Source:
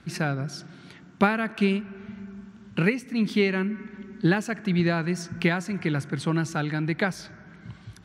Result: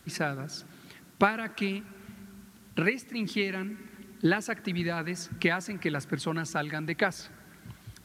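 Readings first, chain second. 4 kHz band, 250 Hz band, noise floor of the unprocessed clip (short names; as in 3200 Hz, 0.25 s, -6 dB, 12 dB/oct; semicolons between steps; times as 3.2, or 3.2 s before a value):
-1.5 dB, -6.5 dB, -50 dBFS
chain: harmonic-percussive split harmonic -9 dB; added noise white -60 dBFS; Vorbis 128 kbps 32000 Hz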